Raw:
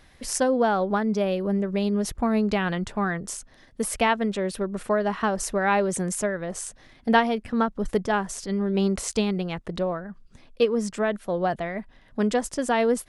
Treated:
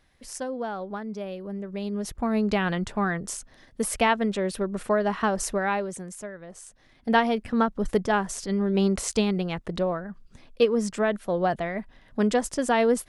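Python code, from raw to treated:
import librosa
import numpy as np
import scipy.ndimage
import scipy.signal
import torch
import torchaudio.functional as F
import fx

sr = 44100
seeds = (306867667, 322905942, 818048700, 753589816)

y = fx.gain(x, sr, db=fx.line((1.51, -10.0), (2.55, 0.0), (5.5, 0.0), (6.07, -11.5), (6.62, -11.5), (7.29, 0.5)))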